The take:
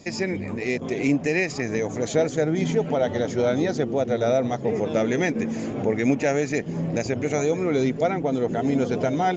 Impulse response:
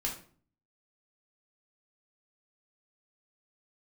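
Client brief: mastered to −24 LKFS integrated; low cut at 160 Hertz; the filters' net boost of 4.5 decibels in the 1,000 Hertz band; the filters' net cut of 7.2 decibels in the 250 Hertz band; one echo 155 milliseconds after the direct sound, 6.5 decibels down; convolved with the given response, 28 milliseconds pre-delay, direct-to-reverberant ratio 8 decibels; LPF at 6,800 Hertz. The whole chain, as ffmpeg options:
-filter_complex "[0:a]highpass=160,lowpass=6800,equalizer=frequency=250:width_type=o:gain=-9,equalizer=frequency=1000:width_type=o:gain=8.5,aecho=1:1:155:0.473,asplit=2[link_01][link_02];[1:a]atrim=start_sample=2205,adelay=28[link_03];[link_02][link_03]afir=irnorm=-1:irlink=0,volume=-11dB[link_04];[link_01][link_04]amix=inputs=2:normalize=0,volume=-0.5dB"

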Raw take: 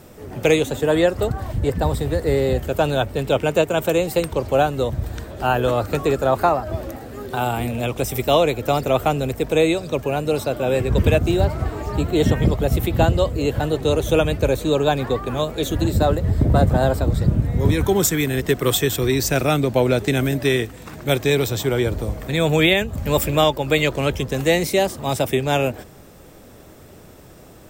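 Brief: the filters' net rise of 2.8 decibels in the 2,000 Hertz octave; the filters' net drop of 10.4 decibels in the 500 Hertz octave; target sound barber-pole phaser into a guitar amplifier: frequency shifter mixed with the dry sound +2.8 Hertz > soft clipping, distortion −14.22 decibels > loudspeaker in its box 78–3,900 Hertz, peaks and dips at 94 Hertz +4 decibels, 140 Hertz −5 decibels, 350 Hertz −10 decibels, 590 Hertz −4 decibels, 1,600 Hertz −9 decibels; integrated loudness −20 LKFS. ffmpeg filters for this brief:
ffmpeg -i in.wav -filter_complex "[0:a]equalizer=frequency=500:width_type=o:gain=-8.5,equalizer=frequency=2000:width_type=o:gain=7,asplit=2[link_01][link_02];[link_02]afreqshift=2.8[link_03];[link_01][link_03]amix=inputs=2:normalize=1,asoftclip=threshold=-17dB,highpass=78,equalizer=frequency=94:width_type=q:width=4:gain=4,equalizer=frequency=140:width_type=q:width=4:gain=-5,equalizer=frequency=350:width_type=q:width=4:gain=-10,equalizer=frequency=590:width_type=q:width=4:gain=-4,equalizer=frequency=1600:width_type=q:width=4:gain=-9,lowpass=frequency=3900:width=0.5412,lowpass=frequency=3900:width=1.3066,volume=9dB" out.wav

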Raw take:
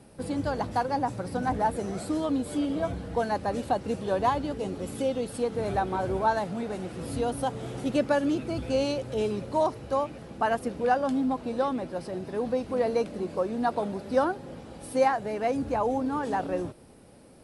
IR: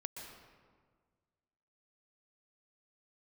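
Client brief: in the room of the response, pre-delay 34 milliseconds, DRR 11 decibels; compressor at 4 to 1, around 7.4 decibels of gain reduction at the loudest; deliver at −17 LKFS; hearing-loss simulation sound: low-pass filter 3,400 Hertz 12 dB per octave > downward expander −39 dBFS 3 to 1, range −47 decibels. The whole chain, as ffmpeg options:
-filter_complex "[0:a]acompressor=threshold=-27dB:ratio=4,asplit=2[link_01][link_02];[1:a]atrim=start_sample=2205,adelay=34[link_03];[link_02][link_03]afir=irnorm=-1:irlink=0,volume=-9dB[link_04];[link_01][link_04]amix=inputs=2:normalize=0,lowpass=3400,agate=range=-47dB:threshold=-39dB:ratio=3,volume=15dB"

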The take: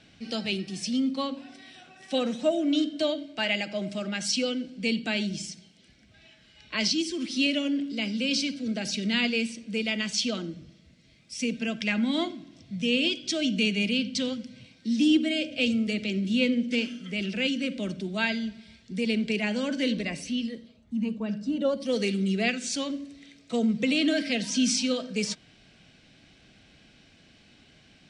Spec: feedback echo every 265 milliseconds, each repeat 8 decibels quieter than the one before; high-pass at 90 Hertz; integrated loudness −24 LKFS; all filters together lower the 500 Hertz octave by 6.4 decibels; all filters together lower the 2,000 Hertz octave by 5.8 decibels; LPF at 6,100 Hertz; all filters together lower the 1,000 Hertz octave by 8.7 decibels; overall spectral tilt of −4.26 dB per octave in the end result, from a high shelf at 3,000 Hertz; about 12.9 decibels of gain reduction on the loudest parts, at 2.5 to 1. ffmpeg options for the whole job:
ffmpeg -i in.wav -af "highpass=90,lowpass=6100,equalizer=frequency=500:width_type=o:gain=-5,equalizer=frequency=1000:width_type=o:gain=-9,equalizer=frequency=2000:width_type=o:gain=-4,highshelf=frequency=3000:gain=-3.5,acompressor=threshold=-41dB:ratio=2.5,aecho=1:1:265|530|795|1060|1325:0.398|0.159|0.0637|0.0255|0.0102,volume=15.5dB" out.wav

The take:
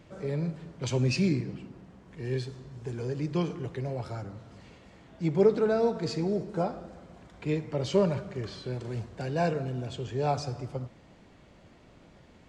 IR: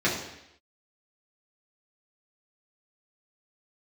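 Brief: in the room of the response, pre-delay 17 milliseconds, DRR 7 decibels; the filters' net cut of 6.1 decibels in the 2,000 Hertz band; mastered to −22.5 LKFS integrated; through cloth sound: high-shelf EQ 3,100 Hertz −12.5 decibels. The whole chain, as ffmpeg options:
-filter_complex "[0:a]equalizer=frequency=2000:width_type=o:gain=-3.5,asplit=2[link_01][link_02];[1:a]atrim=start_sample=2205,adelay=17[link_03];[link_02][link_03]afir=irnorm=-1:irlink=0,volume=-21dB[link_04];[link_01][link_04]amix=inputs=2:normalize=0,highshelf=frequency=3100:gain=-12.5,volume=7.5dB"

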